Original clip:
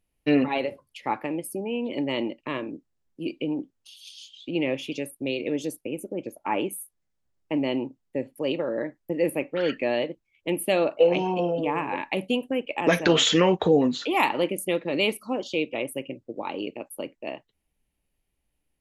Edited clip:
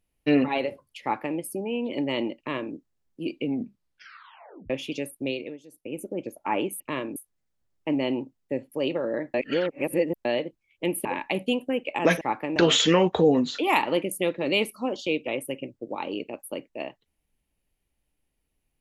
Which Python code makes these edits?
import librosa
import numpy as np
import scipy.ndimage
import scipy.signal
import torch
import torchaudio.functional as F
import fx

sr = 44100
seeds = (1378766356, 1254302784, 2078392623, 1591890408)

y = fx.edit(x, sr, fx.duplicate(start_s=1.02, length_s=0.35, to_s=13.03),
    fx.duplicate(start_s=2.38, length_s=0.36, to_s=6.8),
    fx.tape_stop(start_s=3.39, length_s=1.31),
    fx.fade_down_up(start_s=5.27, length_s=0.74, db=-19.5, fade_s=0.31),
    fx.reverse_span(start_s=8.98, length_s=0.91),
    fx.cut(start_s=10.69, length_s=1.18), tone=tone)